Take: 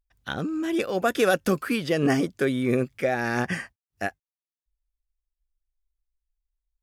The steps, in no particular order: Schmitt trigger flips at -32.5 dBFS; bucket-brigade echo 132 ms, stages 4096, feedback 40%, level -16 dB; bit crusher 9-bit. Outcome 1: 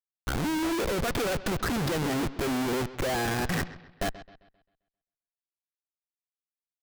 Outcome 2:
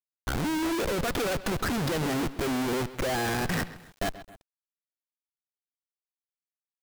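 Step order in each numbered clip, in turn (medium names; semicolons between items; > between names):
bit crusher > Schmitt trigger > bucket-brigade echo; Schmitt trigger > bucket-brigade echo > bit crusher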